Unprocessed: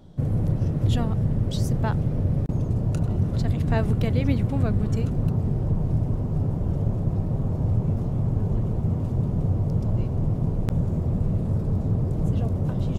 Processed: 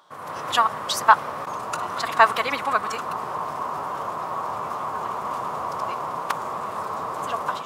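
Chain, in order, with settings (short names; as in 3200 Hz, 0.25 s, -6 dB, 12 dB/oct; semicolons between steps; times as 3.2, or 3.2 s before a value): AGC gain up to 10.5 dB; resonant high-pass 1100 Hz, resonance Q 5.1; time stretch by phase-locked vocoder 0.59×; gain +5.5 dB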